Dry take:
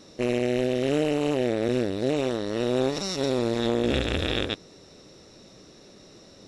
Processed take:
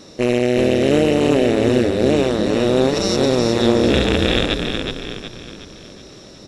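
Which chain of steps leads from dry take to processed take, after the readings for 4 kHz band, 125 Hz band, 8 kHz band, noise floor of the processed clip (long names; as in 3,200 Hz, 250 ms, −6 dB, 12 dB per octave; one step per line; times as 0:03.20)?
+9.5 dB, +9.5 dB, +9.5 dB, −41 dBFS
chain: echo with shifted repeats 369 ms, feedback 45%, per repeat −31 Hz, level −5 dB
level +8 dB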